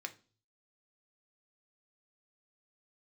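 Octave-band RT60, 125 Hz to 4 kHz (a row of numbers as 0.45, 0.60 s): 0.80, 0.50, 0.40, 0.35, 0.30, 0.40 s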